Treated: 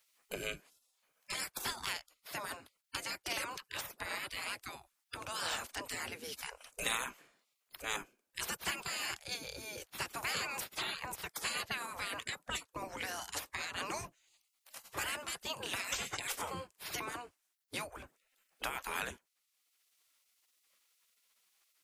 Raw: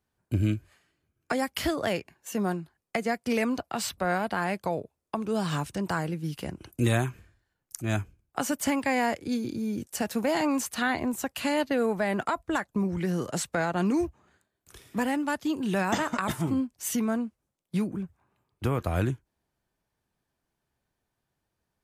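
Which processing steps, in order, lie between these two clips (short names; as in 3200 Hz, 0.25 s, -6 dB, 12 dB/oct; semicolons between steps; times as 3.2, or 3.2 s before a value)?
spectral gate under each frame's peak -20 dB weak; three-band squash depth 40%; gain +3 dB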